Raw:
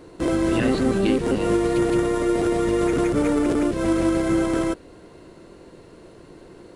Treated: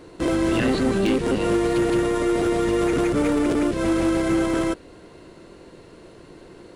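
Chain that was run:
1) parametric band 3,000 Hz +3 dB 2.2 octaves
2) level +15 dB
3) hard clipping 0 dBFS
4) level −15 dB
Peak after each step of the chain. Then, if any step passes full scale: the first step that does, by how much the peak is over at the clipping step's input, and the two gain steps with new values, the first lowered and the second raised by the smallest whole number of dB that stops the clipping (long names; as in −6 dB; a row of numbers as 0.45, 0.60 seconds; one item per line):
−7.0, +8.0, 0.0, −15.0 dBFS
step 2, 8.0 dB
step 2 +7 dB, step 4 −7 dB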